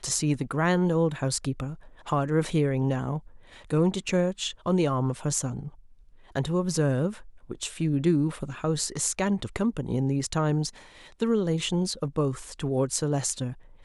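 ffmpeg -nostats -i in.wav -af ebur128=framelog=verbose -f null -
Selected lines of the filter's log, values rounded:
Integrated loudness:
  I:         -27.3 LUFS
  Threshold: -37.7 LUFS
Loudness range:
  LRA:         1.6 LU
  Threshold: -47.8 LUFS
  LRA low:   -28.6 LUFS
  LRA high:  -27.0 LUFS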